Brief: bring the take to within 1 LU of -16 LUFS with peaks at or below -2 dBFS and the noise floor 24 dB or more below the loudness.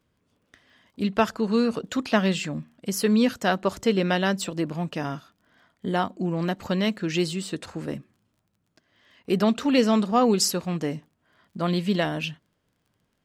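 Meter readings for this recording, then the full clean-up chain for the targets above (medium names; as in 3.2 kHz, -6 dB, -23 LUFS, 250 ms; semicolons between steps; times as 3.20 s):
tick rate 22 per s; loudness -25.0 LUFS; peak level -7.5 dBFS; loudness target -16.0 LUFS
-> de-click; trim +9 dB; peak limiter -2 dBFS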